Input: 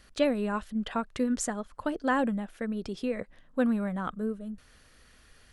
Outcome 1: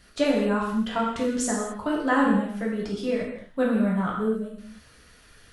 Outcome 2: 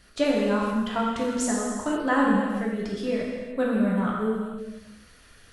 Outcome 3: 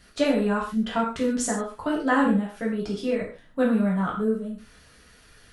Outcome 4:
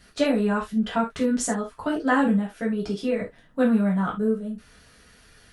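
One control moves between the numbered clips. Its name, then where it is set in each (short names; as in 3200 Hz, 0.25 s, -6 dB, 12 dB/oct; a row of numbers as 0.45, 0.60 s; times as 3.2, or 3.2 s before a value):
non-linear reverb, gate: 0.29, 0.53, 0.17, 0.1 s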